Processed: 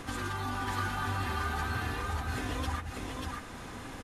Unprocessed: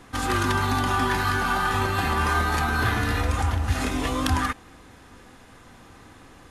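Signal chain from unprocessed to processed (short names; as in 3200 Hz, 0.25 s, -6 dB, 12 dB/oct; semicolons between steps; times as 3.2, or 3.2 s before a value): compressor 3:1, threshold -43 dBFS, peak gain reduction 18 dB; plain phase-vocoder stretch 0.62×; echo 0.589 s -3 dB; gain +7.5 dB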